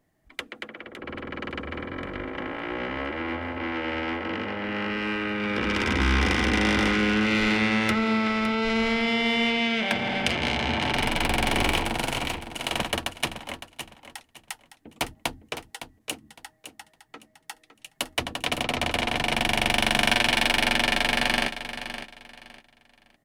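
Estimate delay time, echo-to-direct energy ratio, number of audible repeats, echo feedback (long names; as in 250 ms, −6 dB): 560 ms, −10.5 dB, 2, 25%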